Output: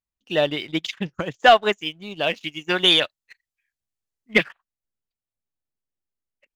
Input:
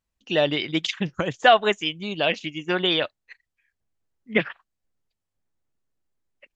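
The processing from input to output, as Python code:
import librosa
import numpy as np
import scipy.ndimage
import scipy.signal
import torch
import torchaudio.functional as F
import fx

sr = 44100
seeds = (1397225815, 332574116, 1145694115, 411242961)

y = fx.high_shelf(x, sr, hz=2400.0, db=10.5, at=(2.43, 4.46))
y = fx.leveller(y, sr, passes=1)
y = fx.upward_expand(y, sr, threshold_db=-27.0, expansion=1.5)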